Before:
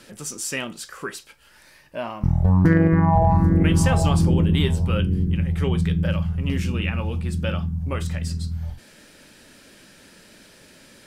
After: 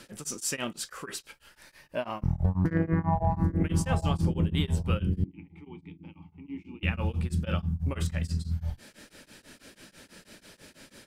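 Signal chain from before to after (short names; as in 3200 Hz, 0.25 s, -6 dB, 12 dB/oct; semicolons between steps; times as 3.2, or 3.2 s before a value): compressor 4:1, threshold -21 dBFS, peak gain reduction 8.5 dB; 5.24–6.83 vowel filter u; beating tremolo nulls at 6.1 Hz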